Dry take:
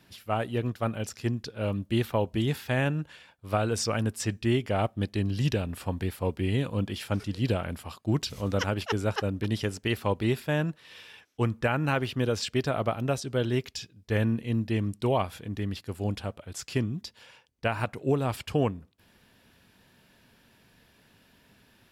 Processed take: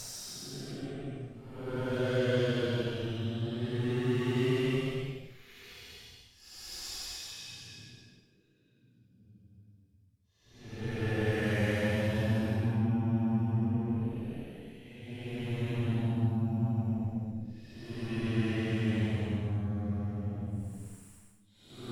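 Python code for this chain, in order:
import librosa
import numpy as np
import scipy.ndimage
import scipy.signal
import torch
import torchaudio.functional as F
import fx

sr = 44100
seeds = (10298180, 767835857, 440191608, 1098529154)

y = fx.cheby_harmonics(x, sr, harmonics=(7, 8), levels_db=(-30, -21), full_scale_db=-14.0)
y = fx.paulstretch(y, sr, seeds[0], factor=12.0, window_s=0.1, from_s=13.19)
y = F.gain(torch.from_numpy(y), -4.5).numpy()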